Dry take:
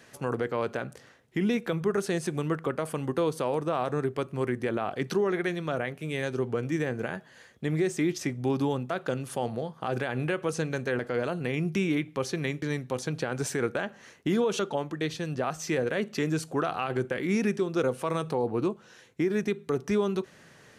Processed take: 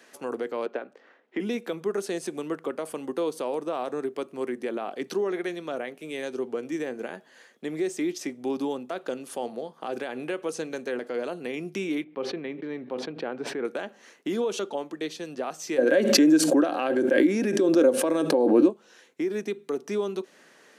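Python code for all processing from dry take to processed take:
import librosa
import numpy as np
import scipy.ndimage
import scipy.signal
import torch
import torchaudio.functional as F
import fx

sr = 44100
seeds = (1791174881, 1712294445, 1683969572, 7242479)

y = fx.chain(x, sr, fx.transient(attack_db=5, sustain_db=-3),
    fx.bandpass_edges(low_hz=260.0, high_hz=2500.0),
    fx.band_squash(depth_pct=40), at=(0.66, 1.4))
y = fx.chain(y, sr, fx.air_absorb(metres=400.0),
    fx.sustainer(db_per_s=38.0), at=(12.04, 13.65))
y = fx.chain(y, sr, fx.small_body(hz=(300.0, 550.0, 1600.0), ring_ms=55, db=15),
    fx.pre_swell(db_per_s=27.0), at=(15.78, 18.7))
y = scipy.signal.sosfilt(scipy.signal.butter(4, 240.0, 'highpass', fs=sr, output='sos'), y)
y = fx.dynamic_eq(y, sr, hz=1500.0, q=1.0, threshold_db=-47.0, ratio=4.0, max_db=-5)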